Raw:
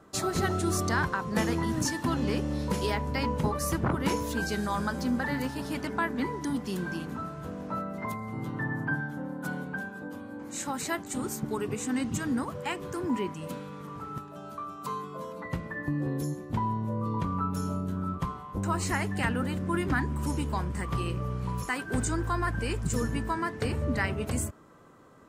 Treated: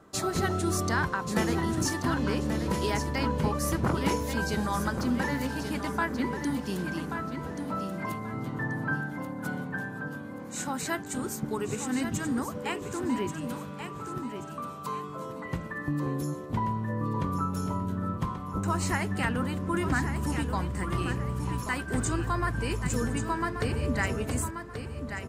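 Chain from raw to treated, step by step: feedback delay 1133 ms, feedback 32%, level -8 dB

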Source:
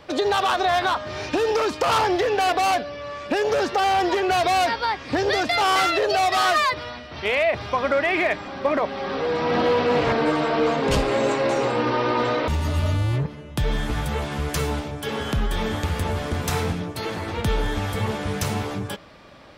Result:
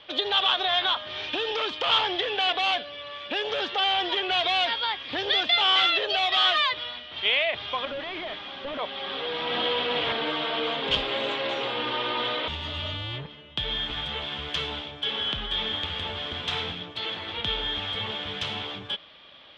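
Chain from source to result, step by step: 7.85–8.79 s: one-bit delta coder 32 kbps, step -41.5 dBFS; resonant low-pass 3.3 kHz, resonance Q 8.1; bass shelf 360 Hz -9.5 dB; trim -6.5 dB

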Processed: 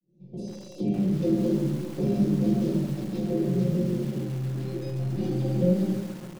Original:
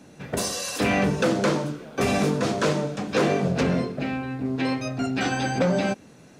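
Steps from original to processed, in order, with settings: fade-in on the opening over 1.40 s; compression 2.5:1, threshold -27 dBFS, peak gain reduction 7 dB; Chebyshev band-stop 340–6100 Hz, order 2; distance through air 340 m; hum notches 50/100 Hz; comb 5.6 ms, depth 89%; 2.83–5.16 s: three bands offset in time highs, lows, mids 40/140 ms, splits 180/620 Hz; simulated room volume 34 m³, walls mixed, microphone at 0.63 m; bit-crushed delay 136 ms, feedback 80%, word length 6-bit, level -13 dB

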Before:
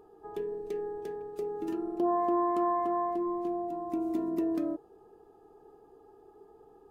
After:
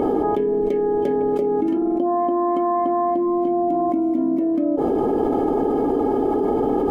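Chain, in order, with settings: treble shelf 3 kHz -10 dB; small resonant body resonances 260/560/2200/3100 Hz, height 18 dB, ringing for 70 ms; level flattener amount 100%

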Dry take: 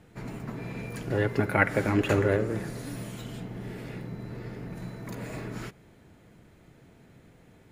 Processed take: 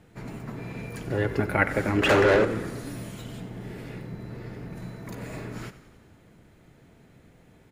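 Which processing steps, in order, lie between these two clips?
2.02–2.45 s: overdrive pedal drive 24 dB, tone 2.7 kHz, clips at -11 dBFS; frequency-shifting echo 93 ms, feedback 64%, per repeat -32 Hz, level -14.5 dB

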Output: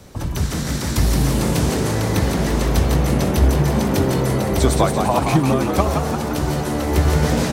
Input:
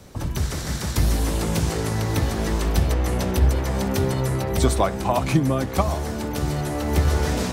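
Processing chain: frequency-shifting echo 171 ms, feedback 59%, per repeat +79 Hz, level -5.5 dB; trim +2.5 dB

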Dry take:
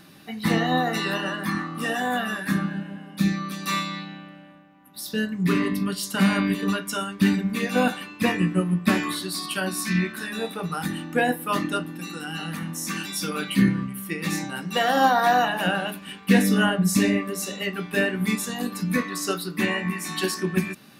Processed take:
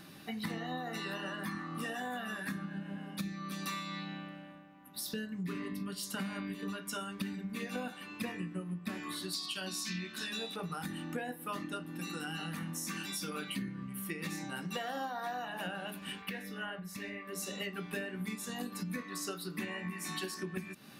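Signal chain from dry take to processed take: 9.33–10.56 s: high-order bell 4.5 kHz +10 dB; compression 10:1, threshold -33 dBFS, peak gain reduction 20.5 dB; 16.22–17.33 s: graphic EQ 125/250/2000/8000 Hz -5/-7/+5/-9 dB; trim -3 dB

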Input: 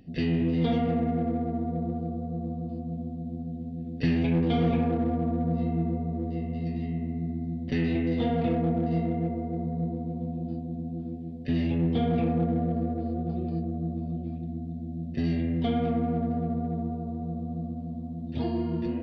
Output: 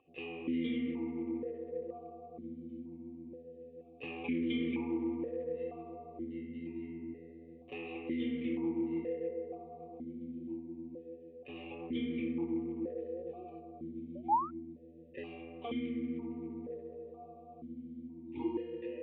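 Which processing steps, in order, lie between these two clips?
painted sound rise, 14.15–14.51 s, 550–1400 Hz -25 dBFS; static phaser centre 1 kHz, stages 8; stepped vowel filter 2.1 Hz; trim +7.5 dB

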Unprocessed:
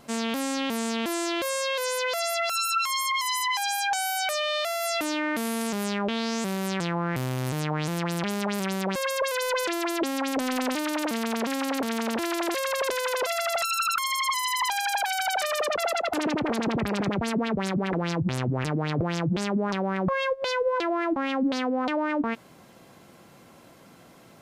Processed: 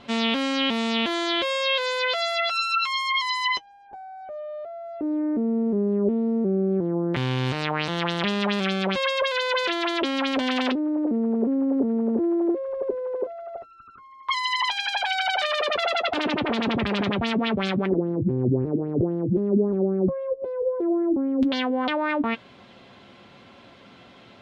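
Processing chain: gain riding 0.5 s; LFO low-pass square 0.14 Hz 380–3400 Hz; comb of notches 160 Hz; trim +2.5 dB

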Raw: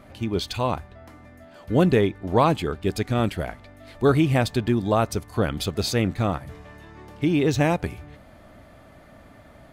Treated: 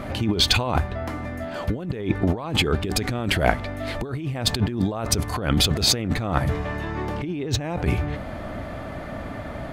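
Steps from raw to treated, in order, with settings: treble shelf 5.1 kHz -6 dB, from 6.50 s -11 dB; compressor with a negative ratio -32 dBFS, ratio -1; trim +8 dB

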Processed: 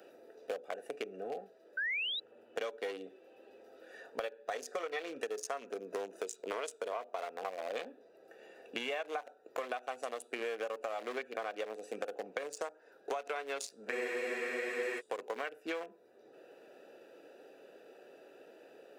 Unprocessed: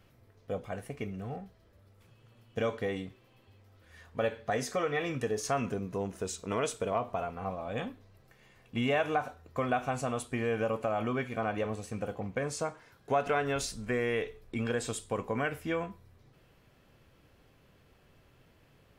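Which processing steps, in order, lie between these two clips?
local Wiener filter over 41 samples; high-pass 400 Hz 24 dB/octave; treble shelf 3.5 kHz +11 dB; compression 6:1, threshold -45 dBFS, peak gain reduction 20.5 dB; painted sound rise, 1.77–2.20 s, 1.5–4 kHz -44 dBFS; saturation -29 dBFS, distortion -31 dB; spectral freeze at 13.94 s, 1.04 s; three bands compressed up and down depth 40%; trim +9 dB

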